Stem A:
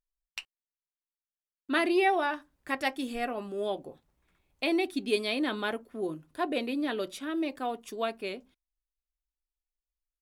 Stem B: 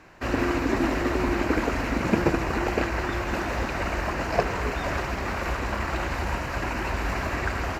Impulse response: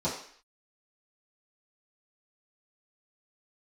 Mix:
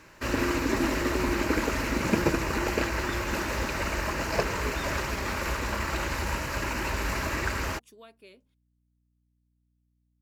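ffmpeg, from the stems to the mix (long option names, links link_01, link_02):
-filter_complex "[0:a]highshelf=frequency=5000:gain=6,acompressor=threshold=-53dB:ratio=1.5,aeval=exprs='val(0)+0.000794*(sin(2*PI*60*n/s)+sin(2*PI*2*60*n/s)/2+sin(2*PI*3*60*n/s)/3+sin(2*PI*4*60*n/s)/4+sin(2*PI*5*60*n/s)/5)':channel_layout=same,volume=-9dB[link_01];[1:a]highshelf=frequency=4500:gain=11.5,volume=-2.5dB[link_02];[link_01][link_02]amix=inputs=2:normalize=0,asuperstop=centerf=730:order=4:qfactor=7"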